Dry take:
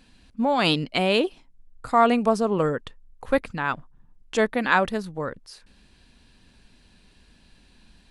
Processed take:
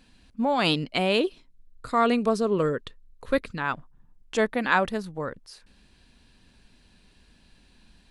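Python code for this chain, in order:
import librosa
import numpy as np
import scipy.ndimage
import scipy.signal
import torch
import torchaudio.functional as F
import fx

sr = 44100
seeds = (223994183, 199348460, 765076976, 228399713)

y = fx.graphic_eq_31(x, sr, hz=(400, 800, 4000), db=(4, -11, 6), at=(1.2, 3.61))
y = F.gain(torch.from_numpy(y), -2.0).numpy()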